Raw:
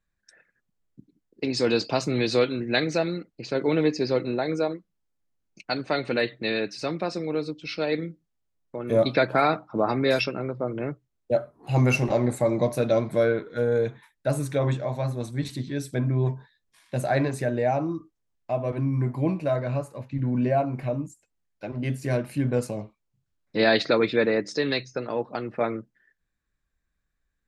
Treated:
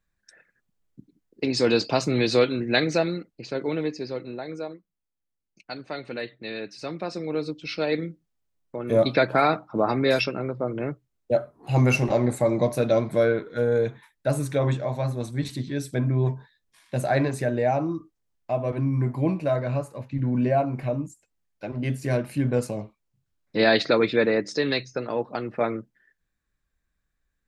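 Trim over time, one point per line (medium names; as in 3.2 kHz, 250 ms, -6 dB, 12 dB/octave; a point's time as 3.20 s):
2.99 s +2 dB
4.15 s -8 dB
6.46 s -8 dB
7.49 s +1 dB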